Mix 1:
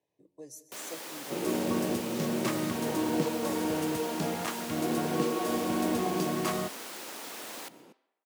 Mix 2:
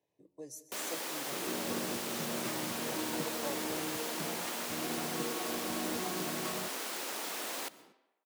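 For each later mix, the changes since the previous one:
first sound +3.0 dB; second sound -9.5 dB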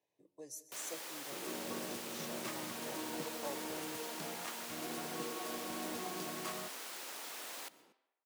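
first sound -6.5 dB; master: add low shelf 450 Hz -8.5 dB

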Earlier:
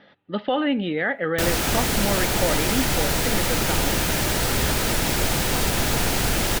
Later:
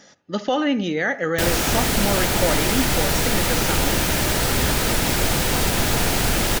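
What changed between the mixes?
speech: remove steep low-pass 3800 Hz 48 dB/oct; reverb: on, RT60 0.35 s

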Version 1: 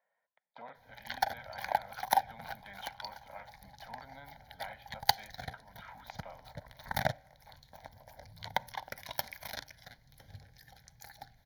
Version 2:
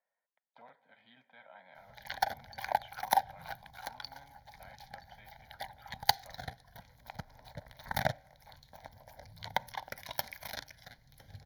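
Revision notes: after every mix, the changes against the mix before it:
speech -7.5 dB; background: entry +1.00 s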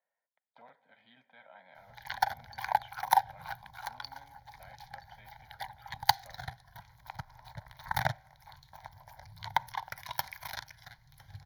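background: add ten-band EQ 125 Hz +6 dB, 250 Hz -11 dB, 500 Hz -11 dB, 1000 Hz +10 dB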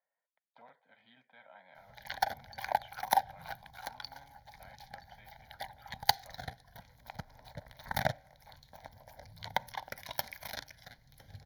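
background: add ten-band EQ 125 Hz -6 dB, 250 Hz +11 dB, 500 Hz +11 dB, 1000 Hz -10 dB; reverb: off

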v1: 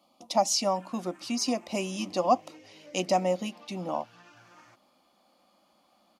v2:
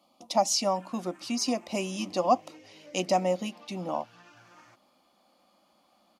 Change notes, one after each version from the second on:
none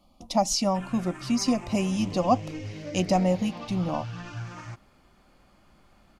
background +11.5 dB; master: remove HPF 320 Hz 12 dB/oct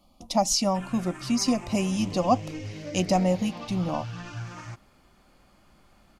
master: add high shelf 5500 Hz +4.5 dB

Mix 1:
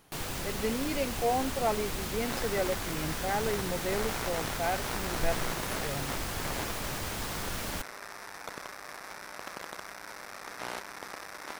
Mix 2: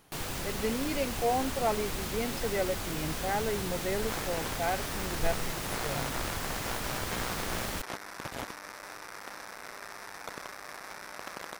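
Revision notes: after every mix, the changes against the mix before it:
second sound: entry +1.80 s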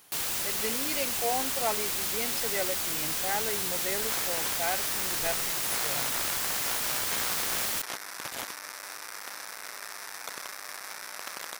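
master: add tilt +3 dB/oct

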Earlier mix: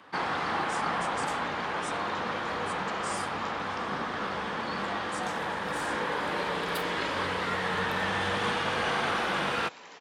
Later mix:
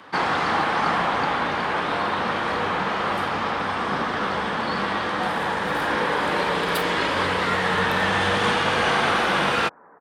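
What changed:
speech: muted; first sound +8.0 dB; second sound: add steep low-pass 1600 Hz 48 dB/oct

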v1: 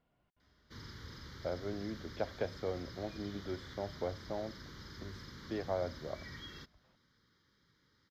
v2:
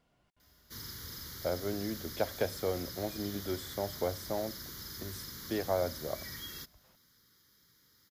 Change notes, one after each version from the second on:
speech +4.0 dB; master: remove air absorption 210 m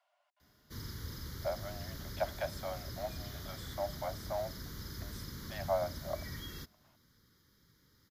speech: add Chebyshev high-pass 570 Hz, order 8; master: add tilt -2 dB/oct

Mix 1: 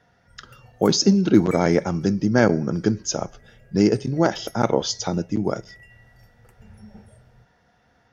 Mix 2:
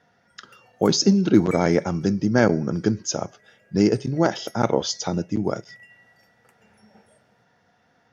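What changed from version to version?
background: add weighting filter A; reverb: off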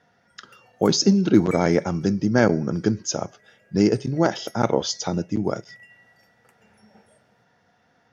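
none

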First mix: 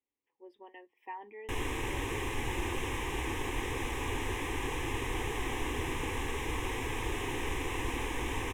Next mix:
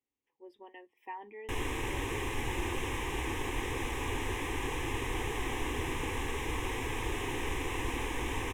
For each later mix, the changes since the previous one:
speech: add tone controls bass +5 dB, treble +6 dB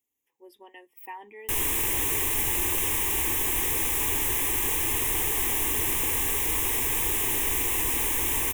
master: remove tape spacing loss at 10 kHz 22 dB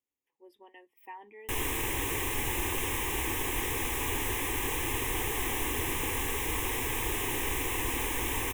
speech -4.5 dB; master: add high shelf 5200 Hz -10.5 dB

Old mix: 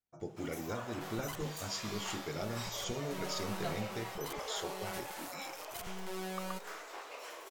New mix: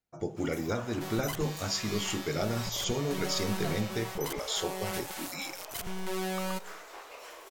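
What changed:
speech +8.0 dB; second sound +7.5 dB

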